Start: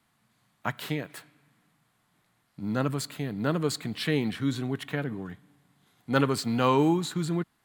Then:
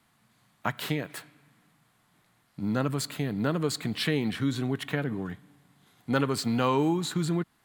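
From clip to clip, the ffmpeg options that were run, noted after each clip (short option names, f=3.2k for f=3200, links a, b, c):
-af "acompressor=threshold=-29dB:ratio=2,volume=3.5dB"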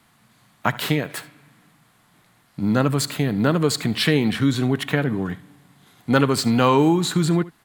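-af "aecho=1:1:72:0.112,volume=8.5dB"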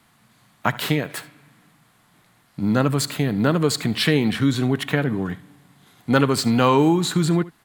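-af anull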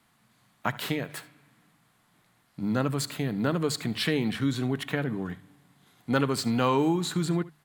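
-af "bandreject=f=50:t=h:w=6,bandreject=f=100:t=h:w=6,bandreject=f=150:t=h:w=6,volume=-7.5dB"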